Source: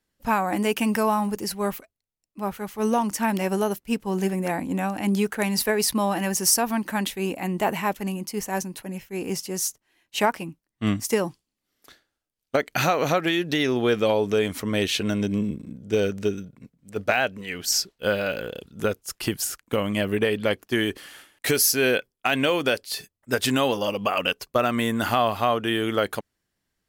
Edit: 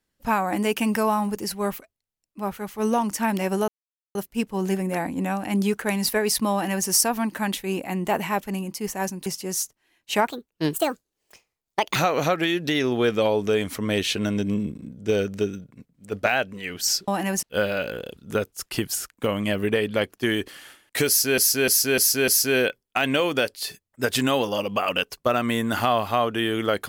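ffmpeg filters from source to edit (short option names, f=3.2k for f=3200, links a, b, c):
-filter_complex "[0:a]asplit=11[a][b][c][d][e][f][g][h][i][j][k];[a]atrim=end=3.68,asetpts=PTS-STARTPTS,afade=t=out:st=3.676:d=0.004:c=hsin,apad=pad_dur=0.47[l];[b]atrim=start=3.68:end=8.792,asetpts=PTS-STARTPTS,afade=t=in:d=0.004:c=hsin[m];[c]atrim=start=9.308:end=10.324[n];[d]atrim=start=10.32:end=12.8,asetpts=PTS-STARTPTS,asetrate=64827,aresample=44100[o];[e]atrim=start=12.796:end=17.922[p];[f]atrim=start=6.048:end=6.402[q];[g]atrim=start=17.918:end=21.872[r];[h]atrim=start=21.568:end=21.872[s];[i]atrim=start=21.568:end=21.872[t];[j]atrim=start=21.568:end=21.872[u];[k]atrim=start=21.568[v];[l][m]concat=n=2:v=0:a=1[w];[w][n]acrossfade=d=0.004:c1=hsin:c2=hsin[x];[x][o]acrossfade=d=0.004:c1=hsin:c2=hsin[y];[y][p]acrossfade=d=0.004:c1=hsin:c2=hsin[z];[z][q]acrossfade=d=0.004:c1=hsin:c2=hsin[aa];[aa][r]acrossfade=d=0.004:c1=hsin:c2=hsin[ab];[ab][s]acrossfade=d=0.004:c1=hsin:c2=hsin[ac];[ac][t]acrossfade=d=0.004:c1=hsin:c2=hsin[ad];[ad][u]acrossfade=d=0.004:c1=hsin:c2=hsin[ae];[ae][v]acrossfade=d=0.004:c1=hsin:c2=hsin"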